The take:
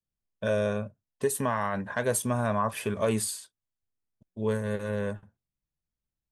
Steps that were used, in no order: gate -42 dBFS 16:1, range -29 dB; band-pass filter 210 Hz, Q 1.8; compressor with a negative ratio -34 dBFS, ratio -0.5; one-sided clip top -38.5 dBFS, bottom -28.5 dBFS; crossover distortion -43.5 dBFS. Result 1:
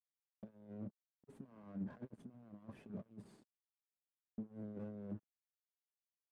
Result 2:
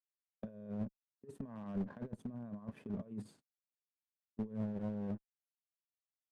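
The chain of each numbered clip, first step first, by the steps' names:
gate > compressor with a negative ratio > one-sided clip > crossover distortion > band-pass filter; crossover distortion > gate > compressor with a negative ratio > band-pass filter > one-sided clip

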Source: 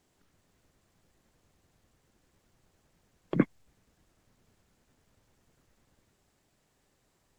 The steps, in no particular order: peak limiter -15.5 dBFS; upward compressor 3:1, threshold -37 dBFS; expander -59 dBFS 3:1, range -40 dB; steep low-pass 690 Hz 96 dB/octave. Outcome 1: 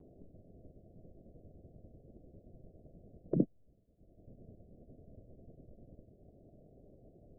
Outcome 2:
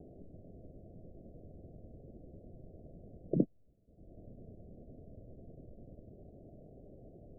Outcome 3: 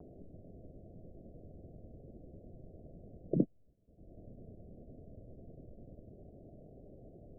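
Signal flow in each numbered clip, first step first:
expander > steep low-pass > peak limiter > upward compressor; upward compressor > expander > peak limiter > steep low-pass; upward compressor > steep low-pass > peak limiter > expander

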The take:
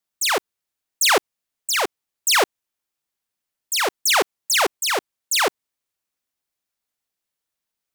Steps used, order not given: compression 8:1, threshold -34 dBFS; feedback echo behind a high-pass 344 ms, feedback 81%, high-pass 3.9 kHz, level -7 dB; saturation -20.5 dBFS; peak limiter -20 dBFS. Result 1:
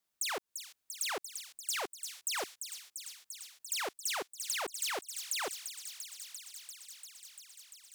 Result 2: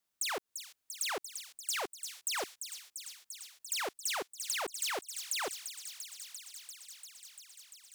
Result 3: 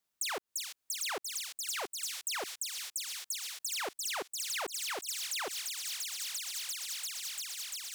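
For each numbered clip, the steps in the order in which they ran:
peak limiter > compression > feedback echo behind a high-pass > saturation; peak limiter > saturation > compression > feedback echo behind a high-pass; feedback echo behind a high-pass > peak limiter > compression > saturation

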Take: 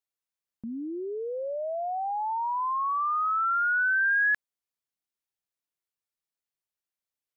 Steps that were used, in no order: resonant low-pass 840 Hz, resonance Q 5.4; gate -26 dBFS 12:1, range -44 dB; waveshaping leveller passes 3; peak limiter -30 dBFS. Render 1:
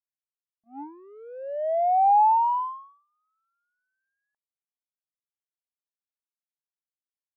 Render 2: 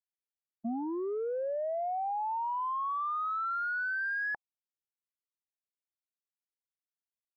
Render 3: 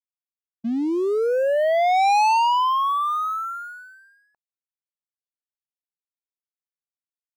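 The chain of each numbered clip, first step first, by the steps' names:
peak limiter > waveshaping leveller > resonant low-pass > gate; waveshaping leveller > gate > resonant low-pass > peak limiter; peak limiter > resonant low-pass > waveshaping leveller > gate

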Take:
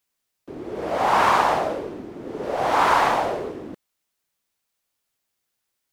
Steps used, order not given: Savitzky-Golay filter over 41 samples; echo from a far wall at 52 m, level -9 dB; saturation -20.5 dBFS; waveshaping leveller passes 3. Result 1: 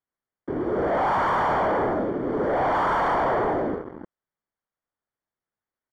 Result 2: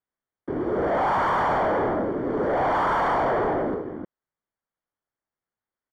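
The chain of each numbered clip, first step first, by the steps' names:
echo from a far wall > waveshaping leveller > saturation > Savitzky-Golay filter; waveshaping leveller > echo from a far wall > saturation > Savitzky-Golay filter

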